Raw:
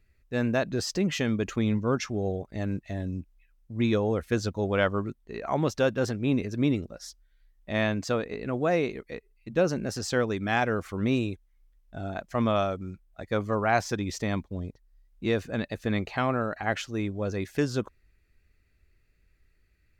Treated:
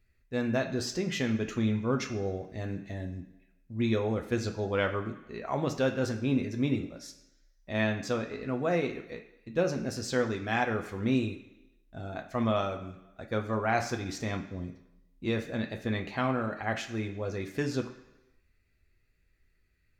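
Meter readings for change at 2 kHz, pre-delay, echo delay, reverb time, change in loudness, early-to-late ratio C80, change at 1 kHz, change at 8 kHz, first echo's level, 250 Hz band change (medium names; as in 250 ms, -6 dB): -2.5 dB, 7 ms, no echo, 0.95 s, -3.0 dB, 12.5 dB, -3.0 dB, -3.5 dB, no echo, -2.5 dB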